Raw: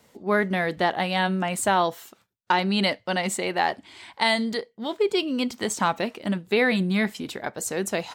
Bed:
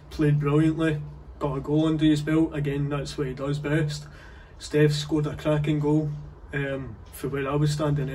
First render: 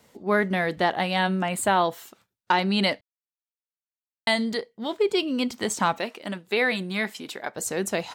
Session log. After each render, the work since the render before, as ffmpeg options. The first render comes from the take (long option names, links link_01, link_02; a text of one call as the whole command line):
ffmpeg -i in.wav -filter_complex "[0:a]asettb=1/sr,asplit=3[link_01][link_02][link_03];[link_01]atrim=end=1.484[link_04];[link_02]atrim=start=1.48:end=1.93,asetpts=PTS-STARTPTS,afade=type=in:duration=0.004:curve=qsin,afade=type=out:start_time=0.446:duration=0.004:curve=qsin,equalizer=frequency=5800:width_type=o:width=0.33:gain=-11[link_05];[link_03]atrim=start=1.926[link_06];[link_04][link_05]acrossfade=duration=0.004:curve1=hsin:curve2=qsin[link_07];[link_07][link_06]acrossfade=duration=0.004:curve1=qsin:curve2=hsin,asettb=1/sr,asplit=3[link_08][link_09][link_10];[link_08]atrim=end=5.984[link_11];[link_09]atrim=start=5.98:end=7.55,asetpts=PTS-STARTPTS,afade=type=in:duration=0.004:curve=qsin,afade=type=out:start_time=1.566:duration=0.004:curve=qsin,highpass=frequency=460:poles=1[link_12];[link_10]atrim=start=7.546[link_13];[link_11][link_12]acrossfade=duration=0.004:curve1=hsin:curve2=qsin[link_14];[link_14][link_13]acrossfade=duration=0.004:curve1=qsin:curve2=hsin,asplit=3[link_15][link_16][link_17];[link_15]atrim=end=3.01,asetpts=PTS-STARTPTS,afade=type=out:start_time=3.006:duration=0.004:curve=hsin[link_18];[link_16]atrim=start=3.01:end=4.27,asetpts=PTS-STARTPTS,volume=0[link_19];[link_17]atrim=start=4.27,asetpts=PTS-STARTPTS,afade=type=in:duration=0.004:curve=hsin[link_20];[link_18][link_19][link_20]concat=n=3:v=0:a=1" out.wav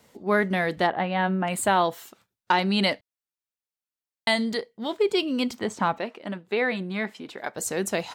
ffmpeg -i in.wav -filter_complex "[0:a]asplit=3[link_01][link_02][link_03];[link_01]afade=type=out:start_time=0.86:duration=0.02[link_04];[link_02]lowpass=2000,afade=type=in:start_time=0.86:duration=0.02,afade=type=out:start_time=1.46:duration=0.02[link_05];[link_03]afade=type=in:start_time=1.46:duration=0.02[link_06];[link_04][link_05][link_06]amix=inputs=3:normalize=0,asettb=1/sr,asplit=3[link_07][link_08][link_09];[link_07]atrim=end=5.594[link_10];[link_08]atrim=start=5.59:end=7.38,asetpts=PTS-STARTPTS,afade=type=in:duration=0.004:curve=qsin,afade=type=out:start_time=1.786:duration=0.004:curve=qsin,lowpass=frequency=1800:poles=1[link_11];[link_09]atrim=start=7.376[link_12];[link_10][link_11]acrossfade=duration=0.004:curve1=hsin:curve2=qsin[link_13];[link_13][link_12]acrossfade=duration=0.004:curve1=qsin:curve2=hsin" out.wav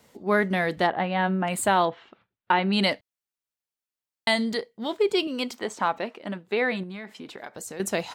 ffmpeg -i in.wav -filter_complex "[0:a]asettb=1/sr,asplit=3[link_01][link_02][link_03];[link_01]atrim=end=1.854[link_04];[link_02]atrim=start=1.85:end=2.73,asetpts=PTS-STARTPTS,afade=type=in:duration=0.004:curve=qsin,afade=type=out:start_time=0.876:duration=0.004:curve=qsin,lowpass=frequency=3200:width=0.5412,lowpass=frequency=3200:width=1.3066[link_05];[link_03]atrim=start=2.726[link_06];[link_04][link_05]acrossfade=duration=0.004:curve1=hsin:curve2=qsin[link_07];[link_07][link_06]acrossfade=duration=0.004:curve1=qsin:curve2=hsin,asettb=1/sr,asplit=3[link_08][link_09][link_10];[link_08]atrim=end=5.274[link_11];[link_09]atrim=start=5.27:end=5.95,asetpts=PTS-STARTPTS,afade=type=in:duration=0.004:curve=qsin,afade=type=out:start_time=0.676:duration=0.004:curve=qsin,bass=frequency=250:gain=-12,treble=frequency=4000:gain=0[link_12];[link_10]atrim=start=5.946[link_13];[link_11][link_12]acrossfade=duration=0.004:curve1=hsin:curve2=qsin[link_14];[link_14][link_13]acrossfade=duration=0.004:curve1=qsin:curve2=hsin,asettb=1/sr,asplit=3[link_15][link_16][link_17];[link_15]atrim=end=6.834[link_18];[link_16]atrim=start=6.83:end=7.8,asetpts=PTS-STARTPTS,afade=type=in:duration=0.004:curve=qsin,afade=type=out:start_time=0.966:duration=0.004:curve=qsin,acompressor=threshold=-34dB:ratio=6:attack=3.2:release=140:knee=1:detection=peak[link_19];[link_17]atrim=start=7.796[link_20];[link_18][link_19]acrossfade=duration=0.004:curve1=hsin:curve2=qsin[link_21];[link_21][link_20]acrossfade=duration=0.004:curve1=qsin:curve2=hsin" out.wav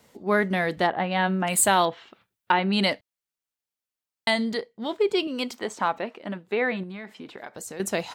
ffmpeg -i in.wav -filter_complex "[0:a]asettb=1/sr,asplit=3[link_01][link_02][link_03];[link_01]atrim=end=1.114[link_04];[link_02]atrim=start=1.11:end=2.52,asetpts=PTS-STARTPTS,afade=type=in:duration=0.004:curve=qsin,afade=type=out:start_time=1.406:duration=0.004:curve=qsin,highshelf=frequency=3800:gain=11.5[link_05];[link_03]atrim=start=2.516[link_06];[link_04][link_05]acrossfade=duration=0.004:curve1=hsin:curve2=qsin[link_07];[link_07][link_06]acrossfade=duration=0.004:curve1=qsin:curve2=hsin,asettb=1/sr,asplit=3[link_08][link_09][link_10];[link_08]atrim=end=4.304[link_11];[link_09]atrim=start=4.3:end=5.36,asetpts=PTS-STARTPTS,afade=type=in:duration=0.004:curve=qsin,afade=type=out:start_time=1.056:duration=0.004:curve=qsin,highshelf=frequency=5800:gain=-5.5[link_12];[link_10]atrim=start=5.356[link_13];[link_11][link_12]acrossfade=duration=0.004:curve1=hsin:curve2=qsin[link_14];[link_14][link_13]acrossfade=duration=0.004:curve1=qsin:curve2=hsin,asettb=1/sr,asplit=3[link_15][link_16][link_17];[link_15]atrim=end=5.994[link_18];[link_16]atrim=start=5.99:end=7.48,asetpts=PTS-STARTPTS,afade=type=in:duration=0.004:curve=qsin,afade=type=out:start_time=1.486:duration=0.004:curve=qsin,acrossover=split=3600[link_19][link_20];[link_20]acompressor=threshold=-56dB:ratio=4:attack=1:release=60[link_21];[link_19][link_21]amix=inputs=2:normalize=0[link_22];[link_17]atrim=start=7.476[link_23];[link_18][link_22]acrossfade=duration=0.004:curve1=hsin:curve2=qsin[link_24];[link_24][link_23]acrossfade=duration=0.004:curve1=qsin:curve2=hsin" out.wav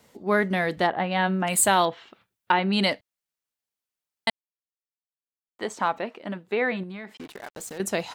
ffmpeg -i in.wav -filter_complex "[0:a]asettb=1/sr,asplit=3[link_01][link_02][link_03];[link_01]atrim=end=7.174[link_04];[link_02]atrim=start=7.17:end=7.78,asetpts=PTS-STARTPTS,afade=type=in:duration=0.004:curve=qsin,afade=type=out:start_time=0.606:duration=0.004:curve=qsin,acrusher=bits=6:mix=0:aa=0.5[link_05];[link_03]atrim=start=7.776[link_06];[link_04][link_05]acrossfade=duration=0.004:curve1=hsin:curve2=qsin[link_07];[link_07][link_06]acrossfade=duration=0.004:curve1=qsin:curve2=hsin,asplit=3[link_08][link_09][link_10];[link_08]atrim=end=4.3,asetpts=PTS-STARTPTS,afade=type=out:start_time=4.296:duration=0.004:curve=hsin[link_11];[link_09]atrim=start=4.3:end=5.59,asetpts=PTS-STARTPTS,volume=0[link_12];[link_10]atrim=start=5.59,asetpts=PTS-STARTPTS,afade=type=in:duration=0.004:curve=hsin[link_13];[link_11][link_12][link_13]concat=n=3:v=0:a=1" out.wav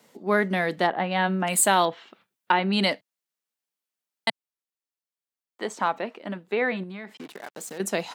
ffmpeg -i in.wav -af "highpass=frequency=150:width=0.5412,highpass=frequency=150:width=1.3066" out.wav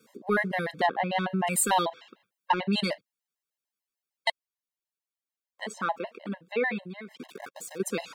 ffmpeg -i in.wav -af "asoftclip=type=tanh:threshold=-7dB,afftfilt=real='re*gt(sin(2*PI*6.7*pts/sr)*(1-2*mod(floor(b*sr/1024/540),2)),0)':imag='im*gt(sin(2*PI*6.7*pts/sr)*(1-2*mod(floor(b*sr/1024/540),2)),0)':win_size=1024:overlap=0.75" out.wav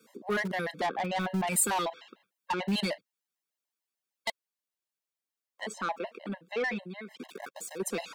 ffmpeg -i in.wav -filter_complex "[0:a]acrossover=split=130|7500[link_01][link_02][link_03];[link_01]acrusher=bits=6:mix=0:aa=0.000001[link_04];[link_02]asoftclip=type=tanh:threshold=-25.5dB[link_05];[link_04][link_05][link_03]amix=inputs=3:normalize=0" out.wav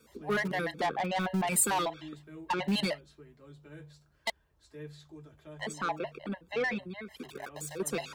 ffmpeg -i in.wav -i bed.wav -filter_complex "[1:a]volume=-25dB[link_01];[0:a][link_01]amix=inputs=2:normalize=0" out.wav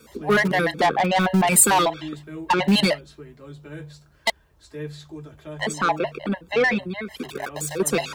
ffmpeg -i in.wav -af "volume=11.5dB" out.wav